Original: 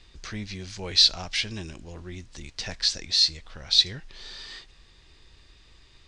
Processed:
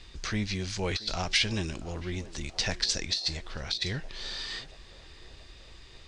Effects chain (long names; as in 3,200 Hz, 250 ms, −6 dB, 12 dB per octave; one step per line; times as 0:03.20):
compressor whose output falls as the input rises −26 dBFS, ratio −0.5
on a send: feedback echo with a band-pass in the loop 680 ms, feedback 66%, band-pass 580 Hz, level −14 dB